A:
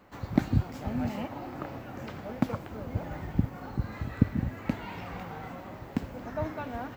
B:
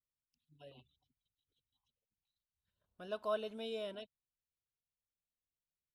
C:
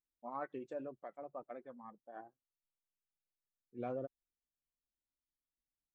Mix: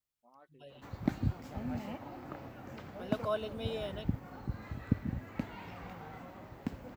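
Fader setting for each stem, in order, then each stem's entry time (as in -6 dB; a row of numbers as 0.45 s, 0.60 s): -7.0 dB, +2.5 dB, -18.5 dB; 0.70 s, 0.00 s, 0.00 s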